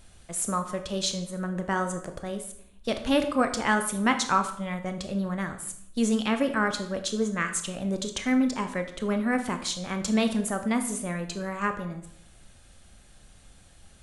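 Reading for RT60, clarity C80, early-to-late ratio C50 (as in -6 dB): 0.70 s, 12.5 dB, 10.5 dB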